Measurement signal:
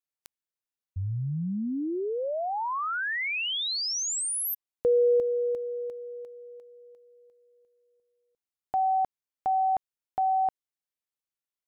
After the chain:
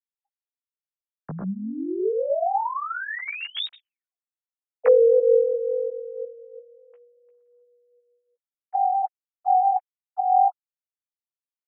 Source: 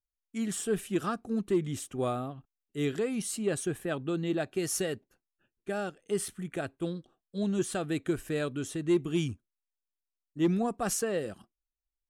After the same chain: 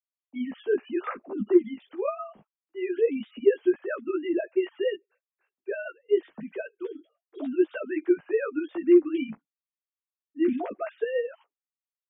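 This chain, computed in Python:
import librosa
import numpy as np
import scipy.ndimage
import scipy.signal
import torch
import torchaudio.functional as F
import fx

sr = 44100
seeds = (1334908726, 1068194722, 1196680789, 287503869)

y = fx.sine_speech(x, sr)
y = fx.chorus_voices(y, sr, voices=6, hz=0.25, base_ms=15, depth_ms=4.9, mix_pct=45)
y = F.gain(torch.from_numpy(y), 8.0).numpy()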